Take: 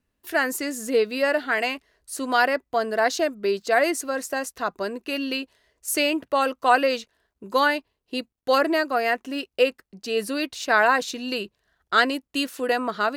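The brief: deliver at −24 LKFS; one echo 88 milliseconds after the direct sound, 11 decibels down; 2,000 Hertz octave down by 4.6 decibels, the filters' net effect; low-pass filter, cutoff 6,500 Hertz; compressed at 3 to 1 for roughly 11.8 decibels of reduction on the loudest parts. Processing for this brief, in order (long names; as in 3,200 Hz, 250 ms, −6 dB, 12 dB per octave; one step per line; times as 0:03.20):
low-pass filter 6,500 Hz
parametric band 2,000 Hz −6.5 dB
downward compressor 3 to 1, threshold −31 dBFS
single-tap delay 88 ms −11 dB
level +9.5 dB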